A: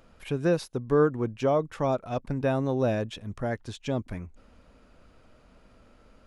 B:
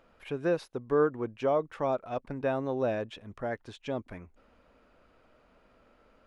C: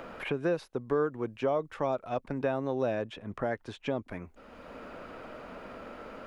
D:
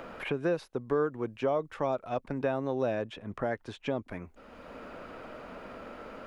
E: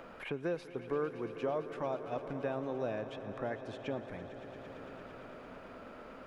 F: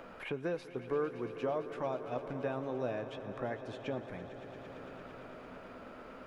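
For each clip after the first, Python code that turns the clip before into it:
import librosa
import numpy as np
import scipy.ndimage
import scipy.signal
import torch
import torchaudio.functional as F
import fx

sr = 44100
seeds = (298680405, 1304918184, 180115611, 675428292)

y1 = fx.bass_treble(x, sr, bass_db=-9, treble_db=-10)
y1 = y1 * librosa.db_to_amplitude(-2.0)
y2 = fx.band_squash(y1, sr, depth_pct=70)
y3 = y2
y4 = fx.echo_swell(y3, sr, ms=113, loudest=5, wet_db=-16.0)
y4 = y4 * librosa.db_to_amplitude(-6.5)
y5 = fx.doubler(y4, sr, ms=16.0, db=-12.0)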